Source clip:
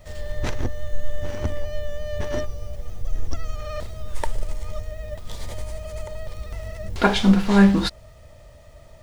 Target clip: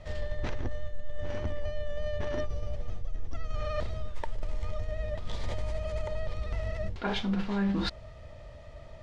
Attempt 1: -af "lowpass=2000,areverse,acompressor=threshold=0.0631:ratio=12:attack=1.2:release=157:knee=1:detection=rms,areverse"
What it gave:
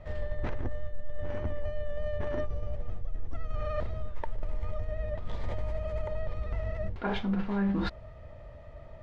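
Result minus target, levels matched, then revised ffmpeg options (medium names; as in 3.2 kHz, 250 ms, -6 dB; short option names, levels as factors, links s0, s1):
4 kHz band -7.0 dB
-af "lowpass=4200,areverse,acompressor=threshold=0.0631:ratio=12:attack=1.2:release=157:knee=1:detection=rms,areverse"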